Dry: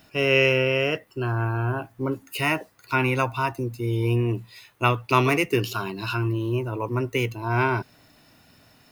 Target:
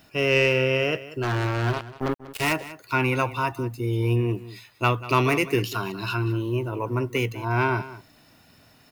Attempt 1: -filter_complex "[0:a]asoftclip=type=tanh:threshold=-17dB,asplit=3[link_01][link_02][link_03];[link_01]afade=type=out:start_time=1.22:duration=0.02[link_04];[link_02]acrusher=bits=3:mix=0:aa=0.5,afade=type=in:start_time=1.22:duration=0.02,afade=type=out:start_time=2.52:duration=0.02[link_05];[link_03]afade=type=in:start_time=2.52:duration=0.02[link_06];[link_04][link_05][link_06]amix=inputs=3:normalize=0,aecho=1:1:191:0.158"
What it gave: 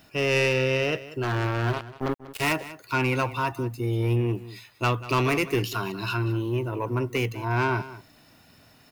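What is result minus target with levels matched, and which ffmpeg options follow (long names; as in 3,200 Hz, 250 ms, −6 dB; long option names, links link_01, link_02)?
soft clipping: distortion +10 dB
-filter_complex "[0:a]asoftclip=type=tanh:threshold=-9.5dB,asplit=3[link_01][link_02][link_03];[link_01]afade=type=out:start_time=1.22:duration=0.02[link_04];[link_02]acrusher=bits=3:mix=0:aa=0.5,afade=type=in:start_time=1.22:duration=0.02,afade=type=out:start_time=2.52:duration=0.02[link_05];[link_03]afade=type=in:start_time=2.52:duration=0.02[link_06];[link_04][link_05][link_06]amix=inputs=3:normalize=0,aecho=1:1:191:0.158"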